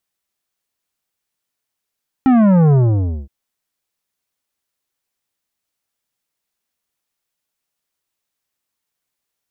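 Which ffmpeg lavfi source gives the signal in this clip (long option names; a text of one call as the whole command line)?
ffmpeg -f lavfi -i "aevalsrc='0.335*clip((1.02-t)/0.55,0,1)*tanh(3.76*sin(2*PI*270*1.02/log(65/270)*(exp(log(65/270)*t/1.02)-1)))/tanh(3.76)':duration=1.02:sample_rate=44100" out.wav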